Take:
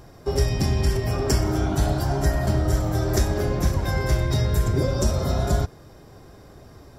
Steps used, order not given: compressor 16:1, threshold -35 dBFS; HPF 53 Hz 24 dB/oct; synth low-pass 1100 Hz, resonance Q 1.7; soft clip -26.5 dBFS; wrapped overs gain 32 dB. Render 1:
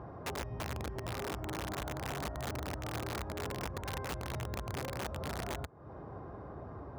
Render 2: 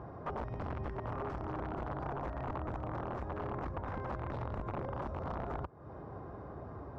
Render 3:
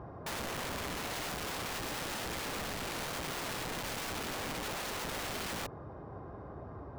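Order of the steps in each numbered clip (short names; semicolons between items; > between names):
compressor > soft clip > synth low-pass > wrapped overs > HPF; HPF > compressor > wrapped overs > synth low-pass > soft clip; synth low-pass > soft clip > HPF > wrapped overs > compressor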